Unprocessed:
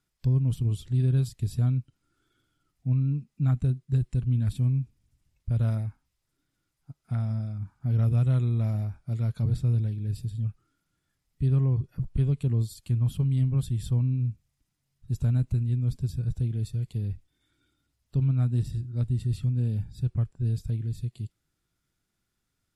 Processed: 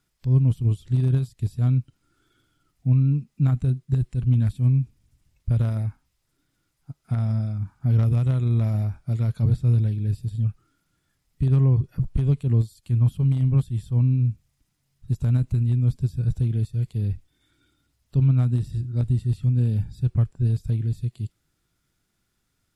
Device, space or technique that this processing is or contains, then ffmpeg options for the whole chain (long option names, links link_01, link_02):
de-esser from a sidechain: -filter_complex "[0:a]asplit=2[link_01][link_02];[link_02]highpass=4100,apad=whole_len=1003544[link_03];[link_01][link_03]sidechaincompress=threshold=-59dB:ratio=4:attack=2.2:release=94,volume=6dB"